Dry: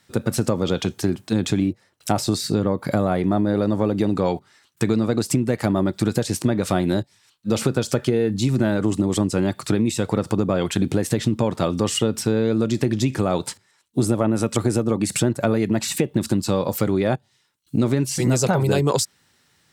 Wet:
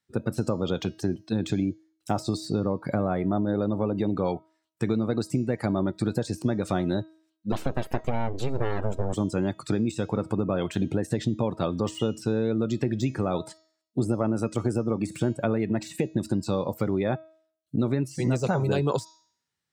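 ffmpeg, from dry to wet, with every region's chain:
ffmpeg -i in.wav -filter_complex "[0:a]asettb=1/sr,asplit=3[link_01][link_02][link_03];[link_01]atrim=end=7.524[link_04];[link_02]atrim=start=7.52:end=9.13,asetpts=PTS-STARTPTS,afade=type=in:duration=0.004:curve=qsin,afade=type=out:start_time=1.606:duration=0.004:curve=qsin,lowpass=8500,aeval=exprs='abs(val(0))':channel_layout=same[link_05];[link_03]atrim=start=9.126[link_06];[link_04][link_05]acrossfade=duration=0.004:curve1=hsin:curve2=qsin[link_07];[link_07][link_06]acrossfade=duration=0.004:curve1=qsin:curve2=hsin,afftdn=noise_reduction=18:noise_floor=-37,bandreject=frequency=318.5:width_type=h:width=4,bandreject=frequency=637:width_type=h:width=4,bandreject=frequency=955.5:width_type=h:width=4,bandreject=frequency=1274:width_type=h:width=4,bandreject=frequency=1592.5:width_type=h:width=4,bandreject=frequency=1911:width_type=h:width=4,bandreject=frequency=2229.5:width_type=h:width=4,bandreject=frequency=2548:width_type=h:width=4,bandreject=frequency=2866.5:width_type=h:width=4,bandreject=frequency=3185:width_type=h:width=4,bandreject=frequency=3503.5:width_type=h:width=4,bandreject=frequency=3822:width_type=h:width=4,bandreject=frequency=4140.5:width_type=h:width=4,bandreject=frequency=4459:width_type=h:width=4,bandreject=frequency=4777.5:width_type=h:width=4,bandreject=frequency=5096:width_type=h:width=4,bandreject=frequency=5414.5:width_type=h:width=4,bandreject=frequency=5733:width_type=h:width=4,bandreject=frequency=6051.5:width_type=h:width=4,bandreject=frequency=6370:width_type=h:width=4,bandreject=frequency=6688.5:width_type=h:width=4,bandreject=frequency=7007:width_type=h:width=4,deesser=0.65,volume=-5.5dB" out.wav

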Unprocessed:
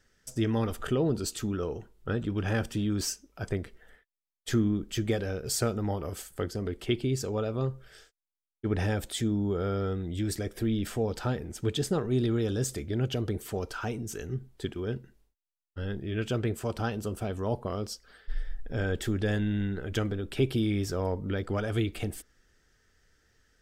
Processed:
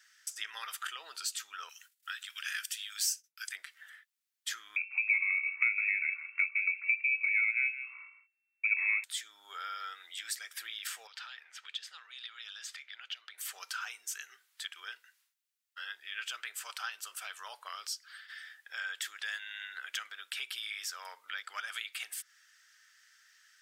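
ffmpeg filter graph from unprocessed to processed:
ffmpeg -i in.wav -filter_complex "[0:a]asettb=1/sr,asplit=3[link_01][link_02][link_03];[link_01]atrim=end=1.694[link_04];[link_02]atrim=start=1.69:end=3.56,asetpts=PTS-STARTPTS,afade=type=in:duration=0.004:curve=qsin,afade=type=out:start_time=1.866:duration=0.004:curve=qsin,agate=range=-33dB:threshold=-51dB:ratio=3:release=100:detection=peak,highpass=frequency=1500:width=0.5412,highpass=frequency=1500:width=1.3066,highshelf=frequency=5400:gain=11.5[link_05];[link_03]atrim=start=3.556[link_06];[link_04][link_05]acrossfade=duration=0.004:curve1=hsin:curve2=qsin[link_07];[link_07][link_06]acrossfade=duration=0.004:curve1=qsin:curve2=hsin,asettb=1/sr,asplit=3[link_08][link_09][link_10];[link_08]atrim=end=4.764[link_11];[link_09]atrim=start=4.76:end=9.04,asetpts=PTS-STARTPTS,afade=type=in:duration=0.004:curve=qsin,afade=type=out:start_time=4.276:duration=0.004:curve=qsin,equalizer=frequency=480:width=1.5:gain=12,aecho=1:1:162:0.168,atrim=end_sample=188748,lowpass=frequency=2300:width_type=q:width=0.5098,lowpass=frequency=2300:width_type=q:width=0.6013,lowpass=frequency=2300:width_type=q:width=0.9,lowpass=frequency=2300:width_type=q:width=2.563,afreqshift=-2700[link_12];[link_10]atrim=start=9.036[link_13];[link_11][link_12]acrossfade=duration=0.004:curve1=hsin:curve2=qsin[link_14];[link_14][link_13]acrossfade=duration=0.004:curve1=qsin:curve2=hsin,asettb=1/sr,asplit=3[link_15][link_16][link_17];[link_15]atrim=end=11.074[link_18];[link_16]atrim=start=11.07:end=13.38,asetpts=PTS-STARTPTS,afade=type=in:duration=0.004:curve=qsin,afade=type=out:start_time=2.306:duration=0.004:curve=qsin,acrossover=split=550 3900:gain=0.224 1 0.0708[link_19][link_20][link_21];[link_19][link_20][link_21]amix=inputs=3:normalize=0,acrossover=split=220|3000[link_22][link_23][link_24];[link_23]acompressor=threshold=-49dB:ratio=6:attack=3.2:release=140:knee=2.83:detection=peak[link_25];[link_22][link_25][link_24]amix=inputs=3:normalize=0[link_26];[link_17]atrim=start=13.376[link_27];[link_18][link_26]acrossfade=duration=0.004:curve1=hsin:curve2=qsin[link_28];[link_28][link_27]acrossfade=duration=0.004:curve1=qsin:curve2=hsin,highpass=frequency=1400:width=0.5412,highpass=frequency=1400:width=1.3066,acompressor=threshold=-48dB:ratio=2,volume=8dB" out.wav

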